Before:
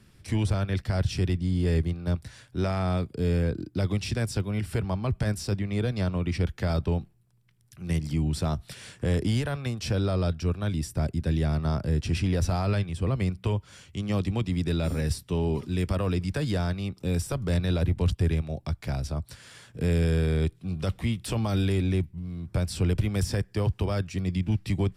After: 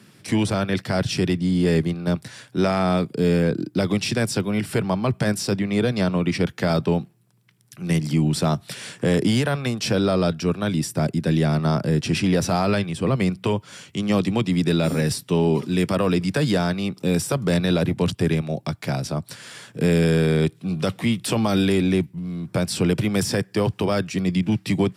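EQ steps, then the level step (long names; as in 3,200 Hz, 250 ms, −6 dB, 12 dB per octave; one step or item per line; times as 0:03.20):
high-pass filter 140 Hz 24 dB per octave
+9.0 dB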